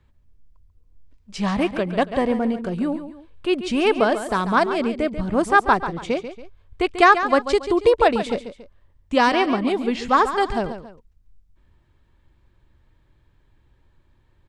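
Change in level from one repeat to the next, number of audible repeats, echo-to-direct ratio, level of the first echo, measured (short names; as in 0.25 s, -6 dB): -8.5 dB, 2, -10.5 dB, -11.0 dB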